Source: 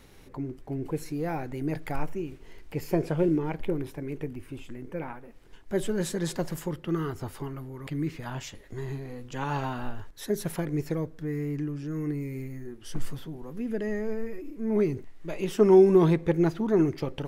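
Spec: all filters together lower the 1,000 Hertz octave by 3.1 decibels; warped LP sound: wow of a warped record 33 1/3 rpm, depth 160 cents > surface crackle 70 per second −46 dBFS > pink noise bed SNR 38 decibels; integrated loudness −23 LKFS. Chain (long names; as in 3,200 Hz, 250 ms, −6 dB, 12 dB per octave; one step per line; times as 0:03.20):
parametric band 1,000 Hz −4 dB
wow of a warped record 33 1/3 rpm, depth 160 cents
surface crackle 70 per second −46 dBFS
pink noise bed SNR 38 dB
level +6 dB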